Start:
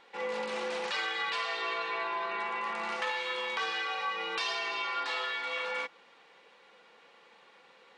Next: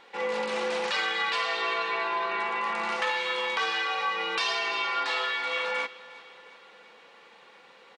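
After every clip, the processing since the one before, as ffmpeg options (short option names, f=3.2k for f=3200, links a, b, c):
-af "aecho=1:1:357|714|1071|1428|1785:0.106|0.0604|0.0344|0.0196|0.0112,volume=5dB"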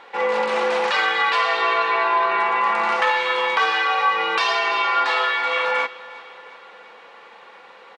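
-af "equalizer=f=960:t=o:w=3:g=10,volume=1dB"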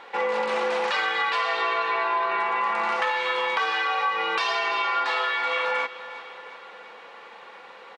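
-af "acompressor=threshold=-24dB:ratio=2.5"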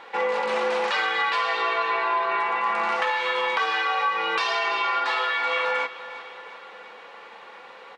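-af "flanger=delay=6.2:depth=3.6:regen=-76:speed=0.36:shape=sinusoidal,volume=5dB"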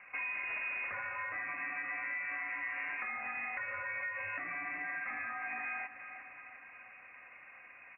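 -af "acompressor=threshold=-26dB:ratio=4,aemphasis=mode=reproduction:type=75kf,lowpass=f=2.6k:t=q:w=0.5098,lowpass=f=2.6k:t=q:w=0.6013,lowpass=f=2.6k:t=q:w=0.9,lowpass=f=2.6k:t=q:w=2.563,afreqshift=-3000,volume=-9dB"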